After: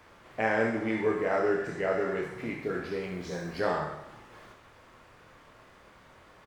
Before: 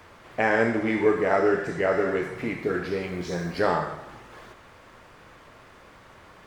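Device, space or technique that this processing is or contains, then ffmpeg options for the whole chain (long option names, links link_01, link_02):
slapback doubling: -filter_complex "[0:a]asplit=3[link_01][link_02][link_03];[link_02]adelay=27,volume=-6.5dB[link_04];[link_03]adelay=65,volume=-8.5dB[link_05];[link_01][link_04][link_05]amix=inputs=3:normalize=0,volume=-6.5dB"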